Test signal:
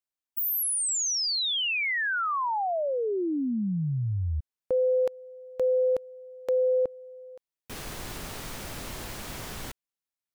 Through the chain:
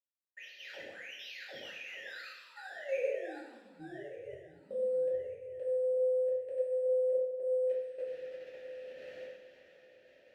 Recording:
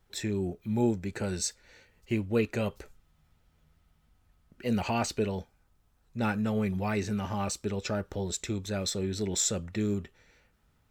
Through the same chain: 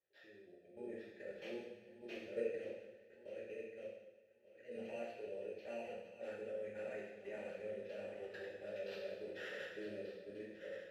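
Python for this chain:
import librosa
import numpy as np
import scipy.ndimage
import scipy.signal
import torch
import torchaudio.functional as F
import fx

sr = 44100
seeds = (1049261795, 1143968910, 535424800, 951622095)

y = fx.reverse_delay_fb(x, sr, ms=594, feedback_pct=49, wet_db=-0.5)
y = fx.sample_hold(y, sr, seeds[0], rate_hz=8800.0, jitter_pct=0)
y = fx.vowel_filter(y, sr, vowel='e')
y = fx.level_steps(y, sr, step_db=15)
y = fx.rev_double_slope(y, sr, seeds[1], early_s=0.96, late_s=2.5, knee_db=-17, drr_db=-6.5)
y = y * librosa.db_to_amplitude(-8.0)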